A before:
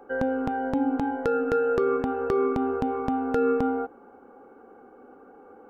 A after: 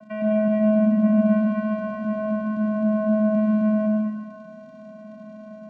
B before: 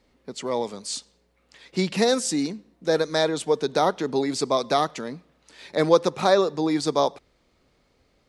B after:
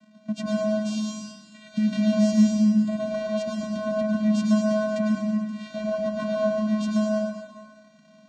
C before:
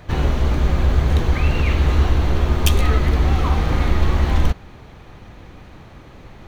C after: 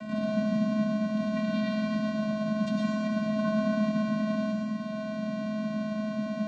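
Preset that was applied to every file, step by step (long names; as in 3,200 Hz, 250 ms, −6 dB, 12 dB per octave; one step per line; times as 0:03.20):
downward compressor, threshold −27 dBFS
brickwall limiter −25 dBFS
surface crackle 160 per second −40 dBFS
channel vocoder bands 8, square 214 Hz
dense smooth reverb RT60 1.6 s, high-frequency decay 0.95×, pre-delay 85 ms, DRR −2.5 dB
level +9 dB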